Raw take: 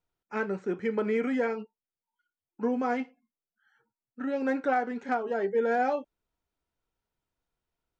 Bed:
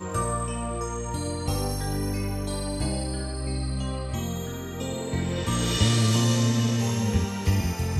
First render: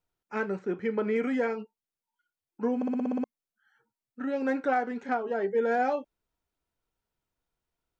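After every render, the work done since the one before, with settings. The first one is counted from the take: 0.59–1.16 s: distance through air 73 m; 2.76 s: stutter in place 0.06 s, 8 plays; 5.07–5.50 s: distance through air 61 m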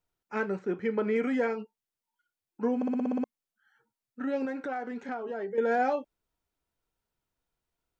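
4.45–5.58 s: compression 3:1, threshold -33 dBFS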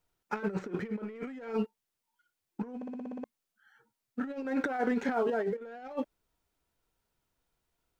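waveshaping leveller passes 1; compressor with a negative ratio -33 dBFS, ratio -0.5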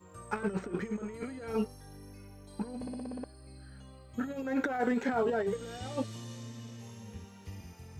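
add bed -22 dB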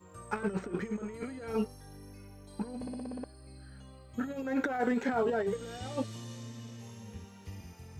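no audible change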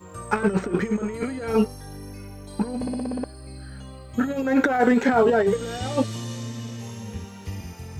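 trim +11.5 dB

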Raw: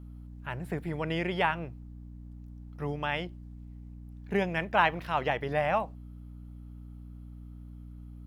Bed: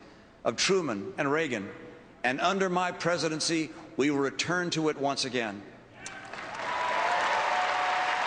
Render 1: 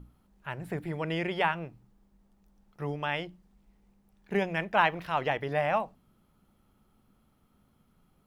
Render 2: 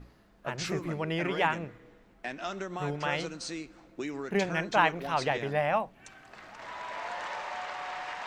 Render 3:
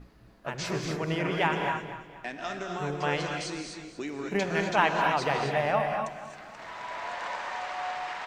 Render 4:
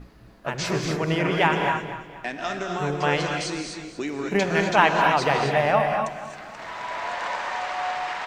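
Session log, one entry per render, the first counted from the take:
hum notches 60/120/180/240/300 Hz
add bed -10 dB
feedback delay 239 ms, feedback 41%, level -13 dB; gated-style reverb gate 290 ms rising, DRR 3 dB
trim +6 dB

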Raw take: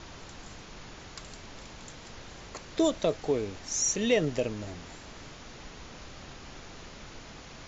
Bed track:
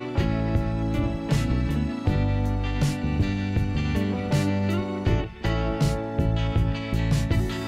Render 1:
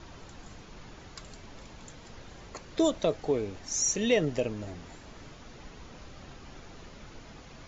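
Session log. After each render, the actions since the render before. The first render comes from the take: noise reduction 6 dB, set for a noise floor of -47 dBFS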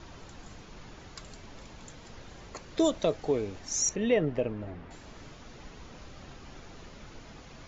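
3.89–4.91 s: low-pass 2.2 kHz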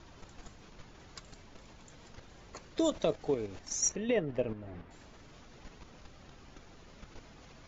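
level held to a coarse grid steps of 9 dB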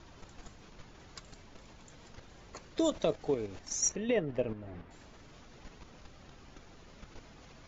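no audible change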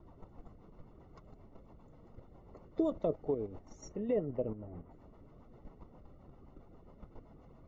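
rotary cabinet horn 7.5 Hz; Savitzky-Golay filter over 65 samples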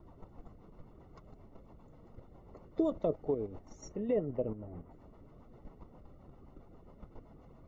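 trim +1 dB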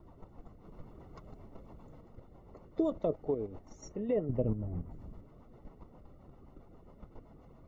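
0.65–2.01 s: gain +4 dB; 4.29–5.21 s: tone controls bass +11 dB, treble +4 dB

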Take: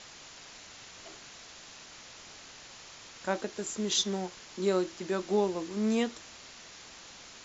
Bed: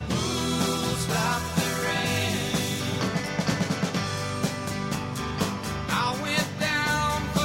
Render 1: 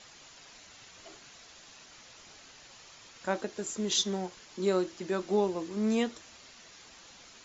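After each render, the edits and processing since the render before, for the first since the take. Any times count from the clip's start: noise reduction 6 dB, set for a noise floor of -50 dBFS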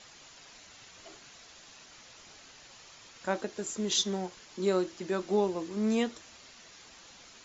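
no audible change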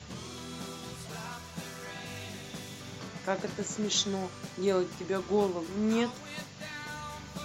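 add bed -16 dB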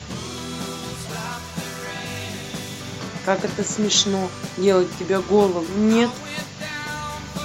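trim +11 dB

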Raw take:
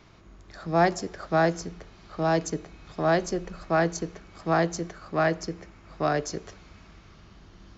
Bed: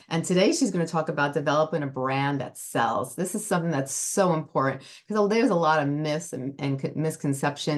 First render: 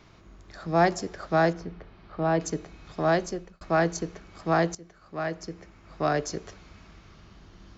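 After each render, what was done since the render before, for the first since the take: 1.53–2.40 s: distance through air 260 m; 2.99–3.61 s: fade out equal-power; 4.75–6.11 s: fade in, from -18 dB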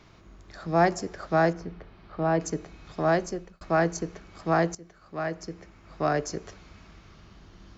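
dynamic bell 3.6 kHz, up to -6 dB, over -51 dBFS, Q 2.1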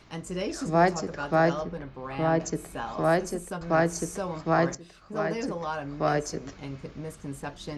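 add bed -11 dB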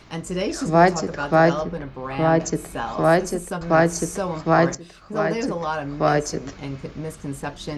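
trim +6.5 dB

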